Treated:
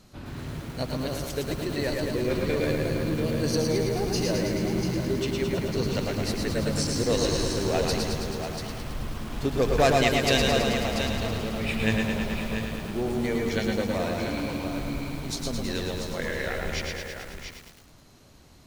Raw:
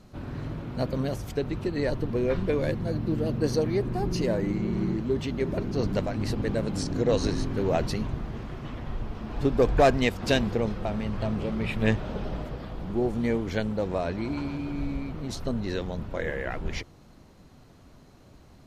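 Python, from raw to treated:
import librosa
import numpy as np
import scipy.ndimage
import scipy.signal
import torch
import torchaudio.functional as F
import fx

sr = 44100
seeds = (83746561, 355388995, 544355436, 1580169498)

y = fx.high_shelf(x, sr, hz=2200.0, db=10.5)
y = fx.echo_multitap(y, sr, ms=(121, 689), db=(-6.5, -8.0))
y = fx.echo_crushed(y, sr, ms=108, feedback_pct=80, bits=7, wet_db=-5.0)
y = y * 10.0 ** (-3.5 / 20.0)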